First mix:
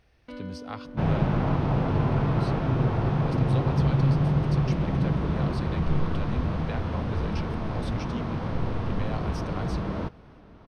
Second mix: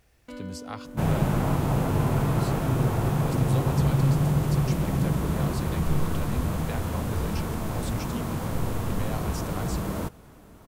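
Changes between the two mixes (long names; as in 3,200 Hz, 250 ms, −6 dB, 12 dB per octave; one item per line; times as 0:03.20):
second sound: remove high-frequency loss of the air 99 metres
master: remove Savitzky-Golay smoothing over 15 samples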